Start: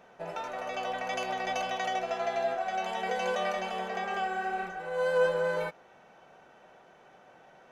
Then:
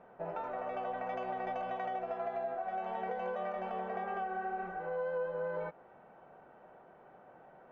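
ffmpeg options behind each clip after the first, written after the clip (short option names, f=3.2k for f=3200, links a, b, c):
-af "lowpass=1.3k,acompressor=threshold=-34dB:ratio=6"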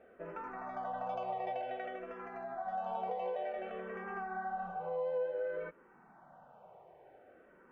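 -filter_complex "[0:a]asplit=2[a][b];[b]afreqshift=-0.55[c];[a][c]amix=inputs=2:normalize=1,volume=1dB"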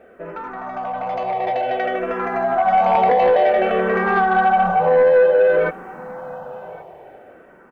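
-af "aeval=exprs='0.0531*sin(PI/2*1.78*val(0)/0.0531)':c=same,dynaudnorm=f=530:g=7:m=12dB,aecho=1:1:1115:0.0841,volume=4dB"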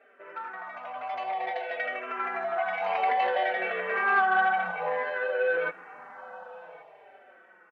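-filter_complex "[0:a]bandpass=f=2.2k:t=q:w=0.84:csg=0,asplit=2[a][b];[b]adelay=4.5,afreqshift=-1[c];[a][c]amix=inputs=2:normalize=1"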